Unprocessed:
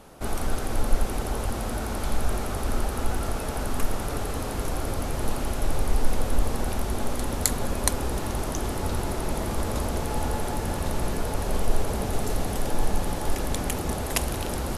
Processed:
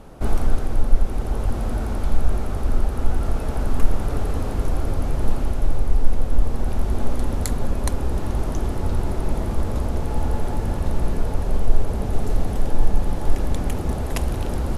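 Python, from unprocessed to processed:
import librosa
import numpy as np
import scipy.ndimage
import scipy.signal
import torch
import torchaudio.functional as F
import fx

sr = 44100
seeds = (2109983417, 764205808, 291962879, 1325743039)

y = fx.tilt_eq(x, sr, slope=-2.0)
y = fx.rider(y, sr, range_db=10, speed_s=0.5)
y = y * 10.0 ** (-2.0 / 20.0)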